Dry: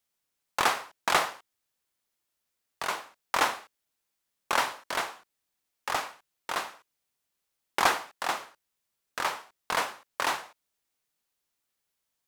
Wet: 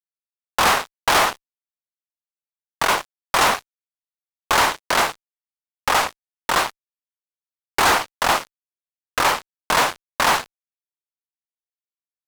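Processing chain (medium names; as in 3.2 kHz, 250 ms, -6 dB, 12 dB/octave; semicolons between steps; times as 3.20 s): treble shelf 2.6 kHz -3 dB; fuzz box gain 34 dB, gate -42 dBFS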